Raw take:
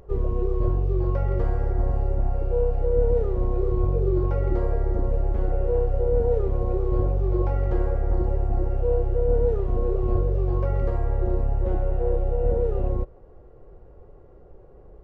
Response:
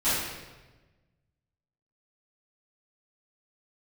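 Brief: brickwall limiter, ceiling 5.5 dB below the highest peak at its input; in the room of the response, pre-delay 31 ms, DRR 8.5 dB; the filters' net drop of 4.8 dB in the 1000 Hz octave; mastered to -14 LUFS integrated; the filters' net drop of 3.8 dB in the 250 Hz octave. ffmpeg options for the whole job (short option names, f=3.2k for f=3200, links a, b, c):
-filter_complex "[0:a]equalizer=f=250:t=o:g=-6.5,equalizer=f=1k:t=o:g=-6.5,alimiter=limit=-16dB:level=0:latency=1,asplit=2[a][b];[1:a]atrim=start_sample=2205,adelay=31[c];[b][c]afir=irnorm=-1:irlink=0,volume=-22dB[d];[a][d]amix=inputs=2:normalize=0,volume=12.5dB"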